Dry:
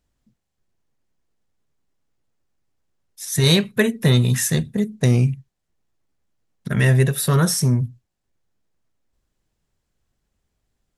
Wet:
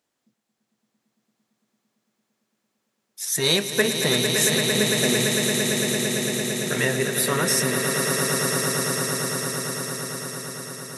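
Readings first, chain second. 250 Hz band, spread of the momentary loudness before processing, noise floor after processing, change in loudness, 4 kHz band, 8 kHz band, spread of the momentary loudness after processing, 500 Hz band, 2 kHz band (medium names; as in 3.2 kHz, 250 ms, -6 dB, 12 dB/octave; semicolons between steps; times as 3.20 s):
-3.0 dB, 9 LU, -78 dBFS, -3.0 dB, +4.5 dB, +6.0 dB, 10 LU, +2.5 dB, +4.5 dB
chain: in parallel at +1 dB: compression, threshold -23 dBFS, peak gain reduction 11.5 dB; on the sum: high-pass 320 Hz 12 dB/octave; echo with a slow build-up 113 ms, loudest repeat 8, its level -7.5 dB; trim -4 dB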